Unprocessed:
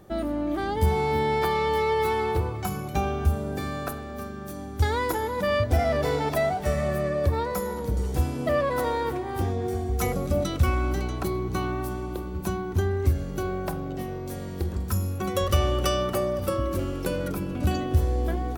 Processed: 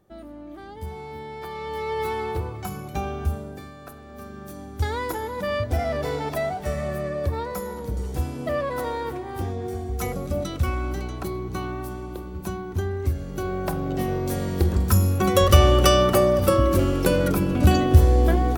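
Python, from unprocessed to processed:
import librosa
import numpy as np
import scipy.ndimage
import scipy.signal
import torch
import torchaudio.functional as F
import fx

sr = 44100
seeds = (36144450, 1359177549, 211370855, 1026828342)

y = fx.gain(x, sr, db=fx.line((1.35, -12.5), (2.01, -2.5), (3.33, -2.5), (3.76, -12.0), (4.36, -2.0), (13.19, -2.0), (14.11, 8.0)))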